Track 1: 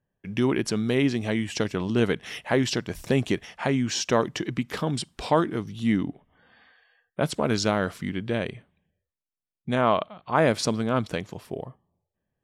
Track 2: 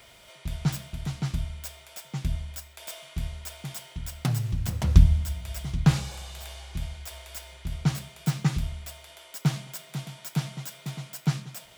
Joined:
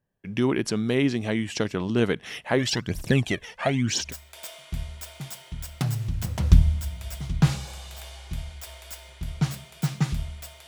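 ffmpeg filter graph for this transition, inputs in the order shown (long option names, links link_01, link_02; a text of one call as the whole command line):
ffmpeg -i cue0.wav -i cue1.wav -filter_complex "[0:a]asplit=3[link_01][link_02][link_03];[link_01]afade=type=out:start_time=2.58:duration=0.02[link_04];[link_02]aphaser=in_gain=1:out_gain=1:delay=2.3:decay=0.66:speed=1:type=triangular,afade=type=in:start_time=2.58:duration=0.02,afade=type=out:start_time=4.14:duration=0.02[link_05];[link_03]afade=type=in:start_time=4.14:duration=0.02[link_06];[link_04][link_05][link_06]amix=inputs=3:normalize=0,apad=whole_dur=10.67,atrim=end=10.67,atrim=end=4.14,asetpts=PTS-STARTPTS[link_07];[1:a]atrim=start=2.42:end=9.11,asetpts=PTS-STARTPTS[link_08];[link_07][link_08]acrossfade=duration=0.16:curve1=tri:curve2=tri" out.wav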